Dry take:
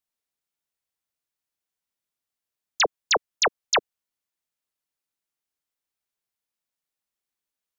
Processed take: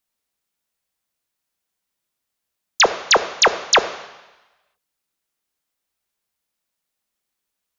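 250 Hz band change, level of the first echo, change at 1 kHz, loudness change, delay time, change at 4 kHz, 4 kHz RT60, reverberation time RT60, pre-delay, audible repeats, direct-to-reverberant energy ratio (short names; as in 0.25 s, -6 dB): +8.0 dB, none, +8.0 dB, +8.0 dB, none, +7.5 dB, 1.2 s, 1.1 s, 3 ms, none, 10.5 dB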